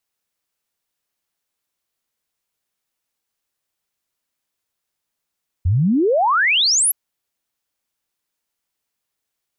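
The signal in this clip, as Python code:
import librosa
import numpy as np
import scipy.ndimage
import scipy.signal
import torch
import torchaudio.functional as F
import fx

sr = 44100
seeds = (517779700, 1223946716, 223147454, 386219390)

y = fx.ess(sr, length_s=1.27, from_hz=80.0, to_hz=12000.0, level_db=-13.0)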